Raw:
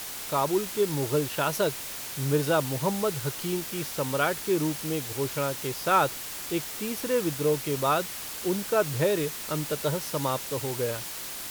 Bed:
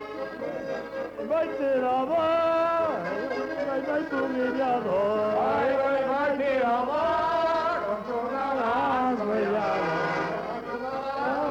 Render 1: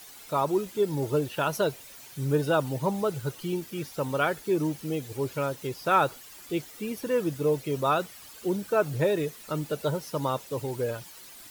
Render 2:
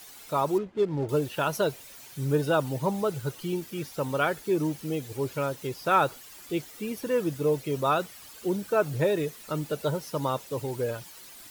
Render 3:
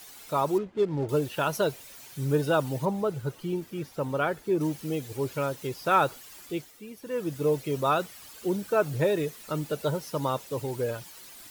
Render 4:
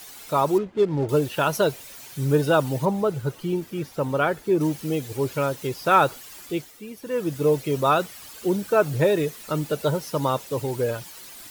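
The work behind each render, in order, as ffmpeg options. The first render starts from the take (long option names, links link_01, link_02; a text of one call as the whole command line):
ffmpeg -i in.wav -af "afftdn=noise_reduction=13:noise_floor=-37" out.wav
ffmpeg -i in.wav -filter_complex "[0:a]asettb=1/sr,asplit=3[link_01][link_02][link_03];[link_01]atrim=end=0.584[link_04];[link_02]atrim=start=0.58:end=1.09,asetpts=PTS-STARTPTS,afade=type=in:duration=0.004:curve=qsin,afade=type=out:start_time=0.506:duration=0.004:curve=qsin,adynamicsmooth=sensitivity=7:basefreq=980[link_05];[link_03]atrim=start=1.086[link_06];[link_04][link_05]acrossfade=duration=0.004:curve1=hsin:curve2=qsin[link_07];[link_07][link_06]acrossfade=duration=0.004:curve1=qsin:curve2=hsin" out.wav
ffmpeg -i in.wav -filter_complex "[0:a]asettb=1/sr,asplit=3[link_01][link_02][link_03];[link_01]atrim=end=2.854[link_04];[link_02]atrim=start=2.85:end=4.61,asetpts=PTS-STARTPTS,afade=type=in:duration=0.004:curve=qsin,afade=type=out:start_time=1.756:duration=0.004:curve=qsin,highshelf=frequency=2200:gain=-8[link_05];[link_03]atrim=start=4.606[link_06];[link_04][link_05]acrossfade=duration=0.004:curve1=hsin:curve2=qsin[link_07];[link_07][link_06]acrossfade=duration=0.004:curve1=qsin:curve2=hsin,asplit=3[link_08][link_09][link_10];[link_08]atrim=end=6.81,asetpts=PTS-STARTPTS,afade=type=out:start_time=6.38:duration=0.43:silence=0.316228[link_11];[link_09]atrim=start=6.81:end=7.01,asetpts=PTS-STARTPTS,volume=-10dB[link_12];[link_10]atrim=start=7.01,asetpts=PTS-STARTPTS,afade=type=in:duration=0.43:silence=0.316228[link_13];[link_11][link_12][link_13]concat=n=3:v=0:a=1" out.wav
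ffmpeg -i in.wav -af "volume=5dB" out.wav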